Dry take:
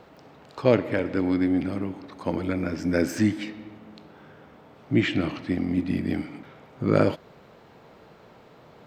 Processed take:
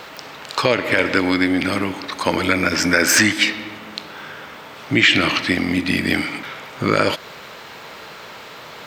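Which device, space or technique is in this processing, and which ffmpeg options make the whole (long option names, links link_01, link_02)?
mastering chain: -filter_complex "[0:a]asettb=1/sr,asplit=3[link_01][link_02][link_03];[link_01]atrim=end=2.694[link_04];[link_02]atrim=start=2.69:end=3.33,asetpts=PTS-STARTPTS,afade=type=in:duration=0.004:curve=qsin,afade=type=out:start_time=0.636:duration=0.004:curve=qsin,adynamicequalizer=threshold=0.01:dfrequency=1200:dqfactor=0.72:tfrequency=1200:tqfactor=0.72:attack=5:release=100:ratio=0.375:range=3:mode=boostabove:tftype=bell[link_05];[link_03]atrim=start=3.326[link_06];[link_04][link_05]acrossfade=duration=0.004:curve1=hsin:curve2=qsin[link_07];[link_07][link_06]acrossfade=duration=0.004:curve1=qsin:curve2=hsin,equalizer=frequency=740:width_type=o:width=0.21:gain=-4,acompressor=threshold=-23dB:ratio=3,tiltshelf=frequency=810:gain=-10,alimiter=level_in=15.5dB:limit=-1dB:release=50:level=0:latency=1,volume=-1dB"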